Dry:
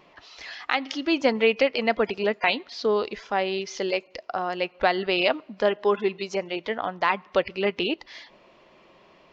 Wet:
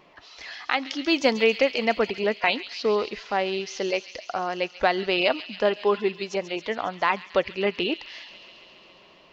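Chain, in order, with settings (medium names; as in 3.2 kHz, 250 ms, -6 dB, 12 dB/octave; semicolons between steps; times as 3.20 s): 1.02–1.44 s: treble shelf 4.6 kHz +11 dB; feedback echo behind a high-pass 137 ms, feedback 79%, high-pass 3.3 kHz, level -9 dB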